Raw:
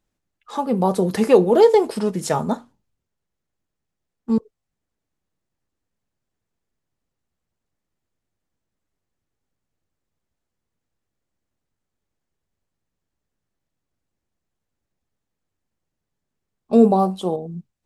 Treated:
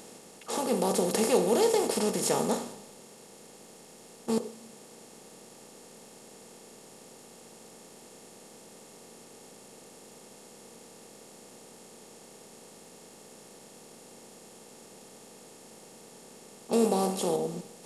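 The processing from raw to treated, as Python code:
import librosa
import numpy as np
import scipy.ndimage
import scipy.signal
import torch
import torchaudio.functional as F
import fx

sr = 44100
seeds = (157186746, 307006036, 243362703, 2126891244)

y = fx.bin_compress(x, sr, power=0.4)
y = librosa.effects.preemphasis(y, coef=0.8, zi=[0.0])
y = fx.rev_schroeder(y, sr, rt60_s=1.4, comb_ms=31, drr_db=16.0)
y = y * 10.0 ** (-1.5 / 20.0)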